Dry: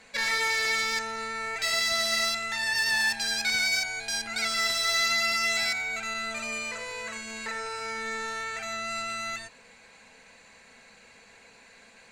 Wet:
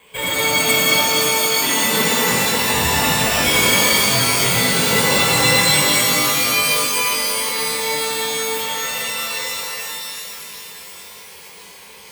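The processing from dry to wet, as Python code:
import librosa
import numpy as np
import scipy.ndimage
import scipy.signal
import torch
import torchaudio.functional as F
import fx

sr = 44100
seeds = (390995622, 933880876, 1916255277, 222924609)

y = fx.ripple_eq(x, sr, per_octave=0.79, db=16)
y = np.repeat(y[::8], 8)[:len(y)]
y = scipy.signal.sosfilt(scipy.signal.butter(2, 48.0, 'highpass', fs=sr, output='sos'), y)
y = fx.rev_shimmer(y, sr, seeds[0], rt60_s=3.7, semitones=12, shimmer_db=-2, drr_db=-6.5)
y = y * librosa.db_to_amplitude(-1.0)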